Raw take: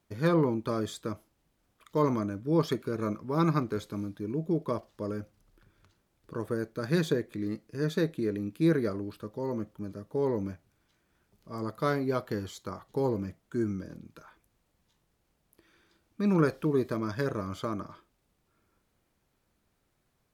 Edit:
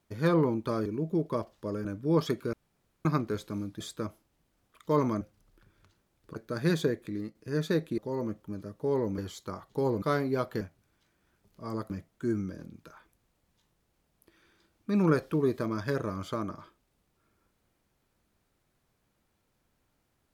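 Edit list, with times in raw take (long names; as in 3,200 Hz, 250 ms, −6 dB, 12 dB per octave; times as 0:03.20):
0:00.86–0:02.27: swap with 0:04.22–0:05.21
0:02.95–0:03.47: fill with room tone
0:06.36–0:06.63: remove
0:07.22–0:07.62: fade out equal-power, to −8.5 dB
0:08.25–0:09.29: remove
0:10.49–0:11.78: swap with 0:12.37–0:13.21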